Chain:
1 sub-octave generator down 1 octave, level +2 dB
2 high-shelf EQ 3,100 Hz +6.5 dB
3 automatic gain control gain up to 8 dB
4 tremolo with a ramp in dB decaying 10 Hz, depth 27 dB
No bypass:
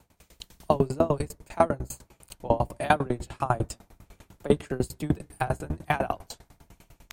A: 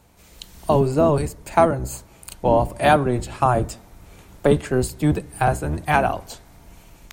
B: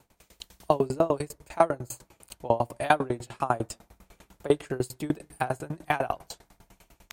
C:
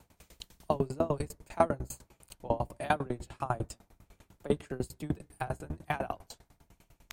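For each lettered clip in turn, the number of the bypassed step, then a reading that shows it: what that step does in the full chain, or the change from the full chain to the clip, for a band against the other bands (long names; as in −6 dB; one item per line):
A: 4, change in momentary loudness spread −4 LU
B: 1, 125 Hz band −5.0 dB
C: 3, change in momentary loudness spread +1 LU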